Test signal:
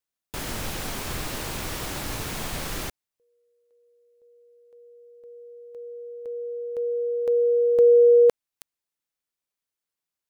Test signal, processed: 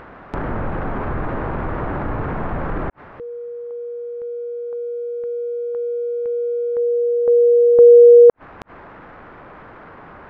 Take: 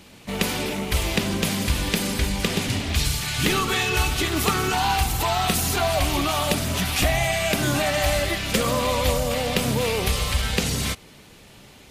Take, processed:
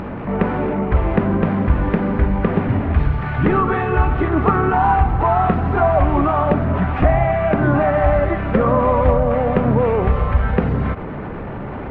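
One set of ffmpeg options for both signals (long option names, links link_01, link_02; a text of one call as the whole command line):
ffmpeg -i in.wav -af "lowpass=frequency=1500:width=0.5412,lowpass=frequency=1500:width=1.3066,acompressor=mode=upward:threshold=-26dB:ratio=4:attack=0.84:release=49:knee=2.83:detection=peak,volume=8dB" out.wav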